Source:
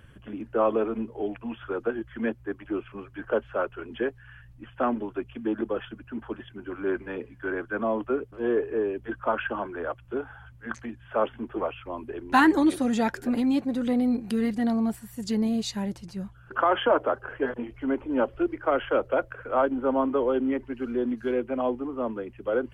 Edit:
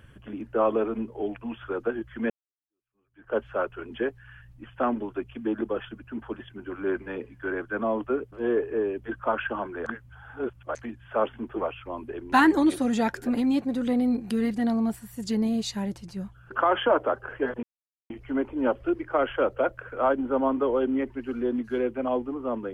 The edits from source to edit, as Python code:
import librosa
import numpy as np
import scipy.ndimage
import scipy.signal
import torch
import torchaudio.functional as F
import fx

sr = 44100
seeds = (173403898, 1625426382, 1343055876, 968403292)

y = fx.edit(x, sr, fx.fade_in_span(start_s=2.3, length_s=1.07, curve='exp'),
    fx.reverse_span(start_s=9.86, length_s=0.89),
    fx.insert_silence(at_s=17.63, length_s=0.47), tone=tone)